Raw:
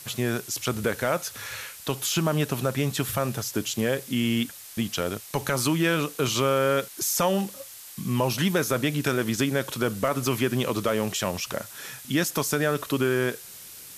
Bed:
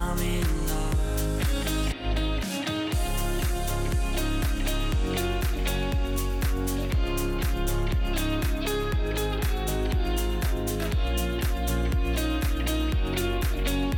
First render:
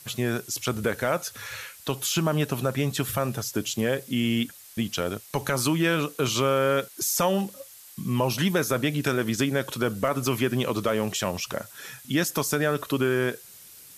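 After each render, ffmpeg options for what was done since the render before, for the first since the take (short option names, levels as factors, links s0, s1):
-af "afftdn=nr=6:nf=-44"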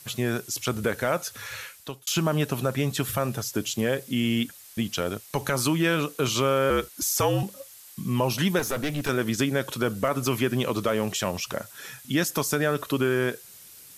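-filter_complex "[0:a]asettb=1/sr,asplit=3[s0][s1][s2];[s0]atrim=end=6.704[s3];[s1]atrim=start=6.7:end=7.43,asetpts=PTS-STARTPTS,afade=t=in:d=0.004:c=qsin,afade=t=out:st=0.726:d=0.004:c=qsin,afreqshift=-62[s4];[s2]atrim=start=7.426[s5];[s3][s4]acrossfade=d=0.004:c1=hsin:c2=qsin[s6];[s6][s5]acrossfade=d=0.004:c1=qsin:c2=hsin,asettb=1/sr,asplit=3[s7][s8][s9];[s7]atrim=end=8.594[s10];[s8]atrim=start=8.59:end=9.09,asetpts=PTS-STARTPTS,afade=t=in:d=0.004:c=qsin,afade=t=out:st=0.496:d=0.004:c=qsin,aeval=exprs='clip(val(0),-1,0.0376)':c=same[s11];[s9]atrim=start=9.086[s12];[s10][s11]acrossfade=d=0.004:c1=hsin:c2=qsin[s13];[s13][s12]acrossfade=d=0.004:c1=qsin:c2=hsin,asplit=2[s14][s15];[s14]atrim=end=2.07,asetpts=PTS-STARTPTS,afade=t=out:st=1.65:d=0.42[s16];[s15]atrim=start=2.07,asetpts=PTS-STARTPTS,afade=t=in:d=0.004:c=hsin[s17];[s16][s17]concat=n=2:v=0:a=1"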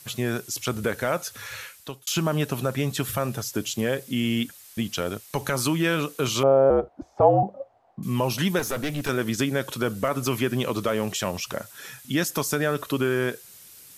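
-filter_complex "[0:a]asettb=1/sr,asplit=3[s0][s1][s2];[s0]atrim=end=6.434[s3];[s1]atrim=start=6.43:end=8.03,asetpts=PTS-STARTPTS,afade=t=in:d=0.004:c=qsin,afade=t=out:st=1.596:d=0.004:c=qsin,lowpass=f=720:t=q:w=7[s4];[s2]atrim=start=8.026[s5];[s3][s4]acrossfade=d=0.004:c1=hsin:c2=qsin[s6];[s6][s5]acrossfade=d=0.004:c1=qsin:c2=hsin"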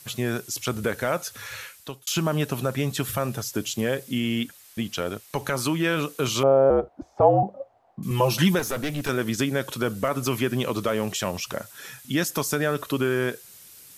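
-filter_complex "[0:a]asettb=1/sr,asplit=3[s0][s1][s2];[s0]atrim=end=4.184[s3];[s1]atrim=start=4.18:end=5.97,asetpts=PTS-STARTPTS,afade=t=in:d=0.004:c=qsin,afade=t=out:st=1.786:d=0.004:c=qsin,bass=f=250:g=-2,treble=f=4000:g=-3[s4];[s2]atrim=start=5.966[s5];[s3][s4]acrossfade=d=0.004:c1=hsin:c2=qsin[s6];[s6][s5]acrossfade=d=0.004:c1=qsin:c2=hsin,asettb=1/sr,asplit=3[s7][s8][s9];[s7]atrim=end=8.104[s10];[s8]atrim=start=8.1:end=8.55,asetpts=PTS-STARTPTS,afade=t=in:d=0.004:c=qsin,afade=t=out:st=0.446:d=0.004:c=qsin,aecho=1:1:5.9:0.97,atrim=end_sample=19845[s11];[s9]atrim=start=8.546[s12];[s10][s11]acrossfade=d=0.004:c1=hsin:c2=qsin[s13];[s13][s12]acrossfade=d=0.004:c1=qsin:c2=hsin"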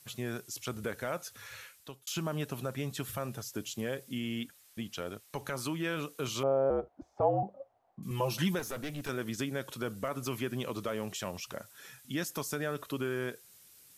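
-af "volume=0.299"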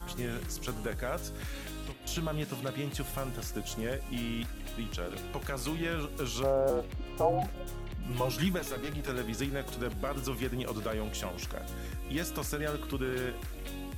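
-filter_complex "[1:a]volume=0.188[s0];[0:a][s0]amix=inputs=2:normalize=0"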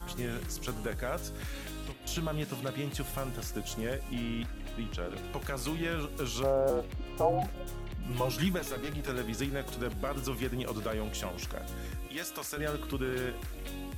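-filter_complex "[0:a]asettb=1/sr,asplit=3[s0][s1][s2];[s0]atrim=end=4.134[s3];[s1]atrim=start=4.13:end=5.24,asetpts=PTS-STARTPTS,afade=t=in:d=0.004:c=qsin,afade=t=out:st=1.106:d=0.004:c=qsin,aemphasis=mode=reproduction:type=cd[s4];[s2]atrim=start=5.236[s5];[s3][s4]acrossfade=d=0.004:c1=hsin:c2=qsin[s6];[s6][s5]acrossfade=d=0.004:c1=qsin:c2=hsin,asettb=1/sr,asplit=3[s7][s8][s9];[s7]atrim=end=12.074[s10];[s8]atrim=start=12.07:end=12.57,asetpts=PTS-STARTPTS,afade=t=in:d=0.004:c=qsin,afade=t=out:st=0.496:d=0.004:c=qsin,highpass=f=650:p=1[s11];[s9]atrim=start=12.566[s12];[s10][s11]acrossfade=d=0.004:c1=hsin:c2=qsin[s13];[s13][s12]acrossfade=d=0.004:c1=qsin:c2=hsin"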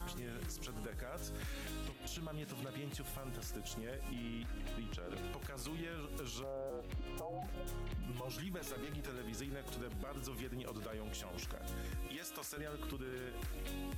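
-af "acompressor=threshold=0.02:ratio=6,alimiter=level_in=3.76:limit=0.0631:level=0:latency=1:release=148,volume=0.266"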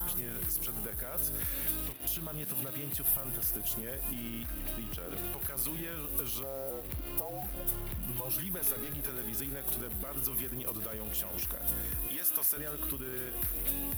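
-filter_complex "[0:a]asplit=2[s0][s1];[s1]acrusher=bits=7:mix=0:aa=0.000001,volume=0.447[s2];[s0][s2]amix=inputs=2:normalize=0,aexciter=amount=15.6:drive=1.5:freq=9900"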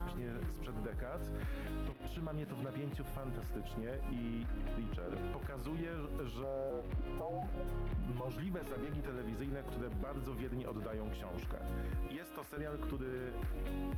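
-af "lowpass=f=2000:p=1,aemphasis=mode=reproduction:type=75fm"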